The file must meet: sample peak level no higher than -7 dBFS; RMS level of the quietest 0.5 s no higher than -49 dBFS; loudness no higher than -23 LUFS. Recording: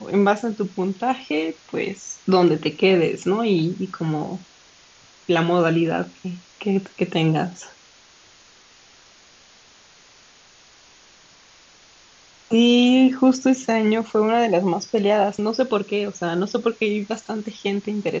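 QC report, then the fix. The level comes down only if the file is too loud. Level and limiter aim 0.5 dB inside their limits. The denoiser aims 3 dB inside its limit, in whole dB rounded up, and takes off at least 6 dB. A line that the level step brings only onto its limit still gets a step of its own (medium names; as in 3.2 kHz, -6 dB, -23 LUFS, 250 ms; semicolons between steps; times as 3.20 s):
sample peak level -5.0 dBFS: fail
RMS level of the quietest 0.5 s -51 dBFS: pass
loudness -21.0 LUFS: fail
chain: trim -2.5 dB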